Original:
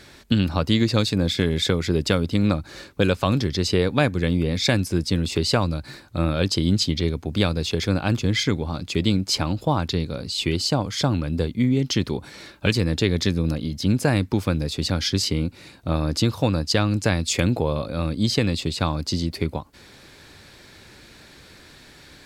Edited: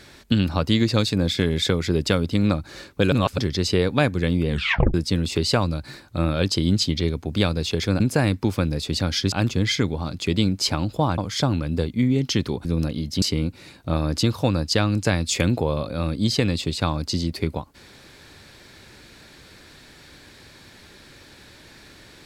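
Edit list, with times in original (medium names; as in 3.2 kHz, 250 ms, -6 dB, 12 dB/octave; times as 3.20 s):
3.12–3.38 s: reverse
4.48 s: tape stop 0.46 s
9.86–10.79 s: delete
12.26–13.32 s: delete
13.89–15.21 s: move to 8.00 s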